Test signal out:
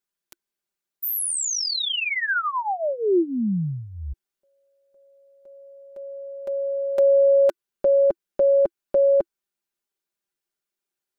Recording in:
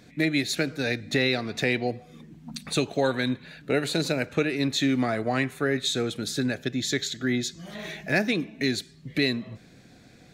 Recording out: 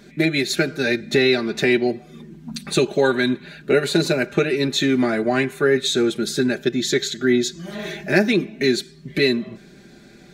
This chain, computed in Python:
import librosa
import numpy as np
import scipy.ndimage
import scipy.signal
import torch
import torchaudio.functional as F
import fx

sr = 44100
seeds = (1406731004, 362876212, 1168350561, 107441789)

y = x + 0.74 * np.pad(x, (int(5.0 * sr / 1000.0), 0))[:len(x)]
y = fx.small_body(y, sr, hz=(340.0, 1500.0), ring_ms=45, db=10)
y = F.gain(torch.from_numpy(y), 3.0).numpy()